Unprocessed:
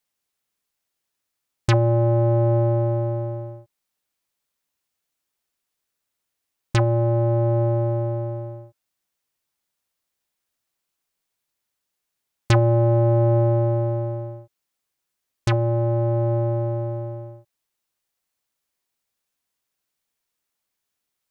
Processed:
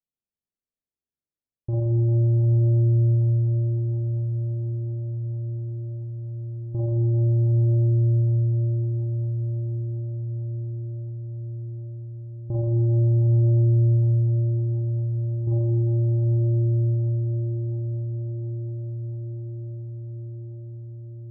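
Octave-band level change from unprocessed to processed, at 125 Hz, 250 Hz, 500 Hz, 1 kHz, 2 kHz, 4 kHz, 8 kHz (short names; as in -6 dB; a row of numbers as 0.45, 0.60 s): +3.0 dB, -3.0 dB, -10.5 dB, under -20 dB, under -40 dB, under -40 dB, n/a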